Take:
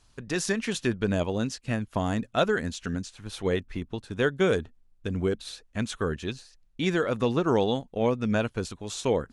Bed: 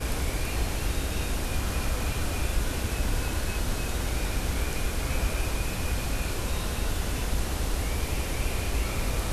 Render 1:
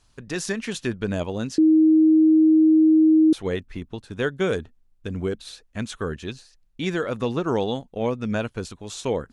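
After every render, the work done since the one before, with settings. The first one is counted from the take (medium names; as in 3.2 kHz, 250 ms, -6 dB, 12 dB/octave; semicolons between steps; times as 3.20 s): 1.58–3.33 s: bleep 315 Hz -12 dBFS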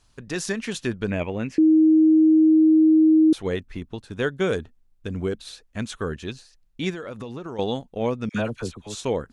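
1.10–2.50 s: FFT filter 1.5 kHz 0 dB, 2.3 kHz +12 dB, 3.7 kHz -11 dB; 6.90–7.59 s: compression 8:1, threshold -30 dBFS; 8.29–8.95 s: phase dispersion lows, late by 57 ms, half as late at 1.1 kHz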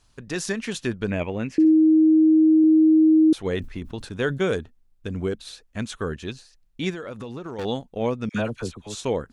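1.53–2.64 s: flutter echo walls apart 11.3 m, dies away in 0.38 s; 3.40–4.41 s: decay stretcher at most 100 dB/s; 7.15–7.65 s: hard clipper -26 dBFS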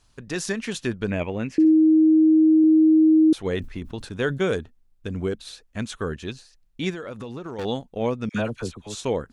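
no audible change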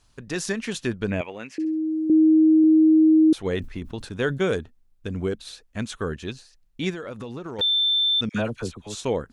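1.21–2.10 s: high-pass 910 Hz 6 dB/octave; 7.61–8.21 s: bleep 3.55 kHz -18 dBFS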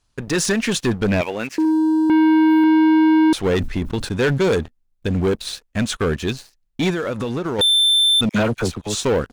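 waveshaping leveller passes 3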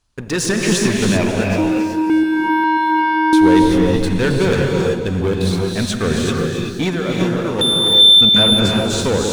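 on a send: echo whose repeats swap between lows and highs 135 ms, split 830 Hz, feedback 62%, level -6 dB; on the sum: gated-style reverb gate 410 ms rising, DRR 0 dB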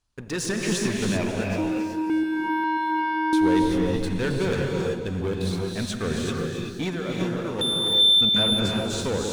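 trim -9 dB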